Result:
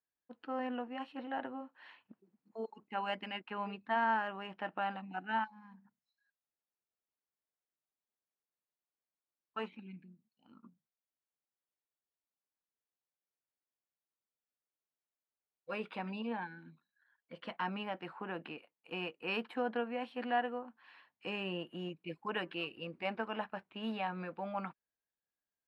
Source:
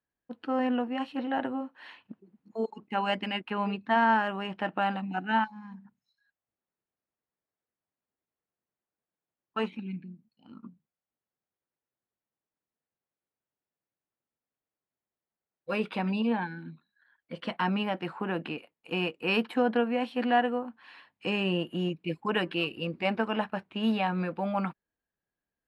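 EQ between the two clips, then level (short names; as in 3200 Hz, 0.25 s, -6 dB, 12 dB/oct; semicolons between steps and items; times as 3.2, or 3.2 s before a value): low shelf 410 Hz -9 dB; high shelf 3900 Hz -10 dB; -5.5 dB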